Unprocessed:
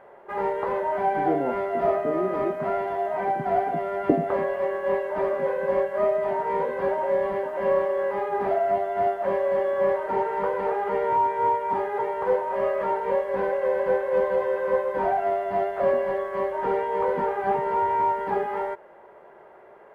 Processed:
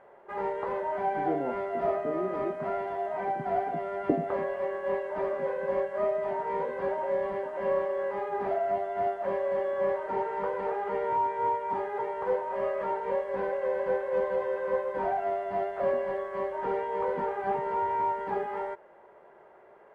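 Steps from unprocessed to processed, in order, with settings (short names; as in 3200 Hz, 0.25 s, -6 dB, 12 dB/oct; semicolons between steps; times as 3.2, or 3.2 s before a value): LPF 10000 Hz 24 dB/oct; gain -5.5 dB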